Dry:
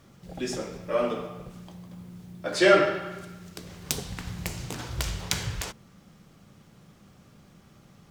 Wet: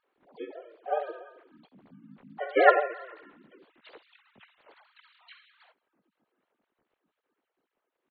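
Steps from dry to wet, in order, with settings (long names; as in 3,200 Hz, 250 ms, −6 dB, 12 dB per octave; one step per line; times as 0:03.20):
three sine waves on the formant tracks
source passing by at 0:02.71, 8 m/s, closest 8.9 metres
pitch-shifted copies added −5 semitones −7 dB, +4 semitones −4 dB, +5 semitones −5 dB
level −5 dB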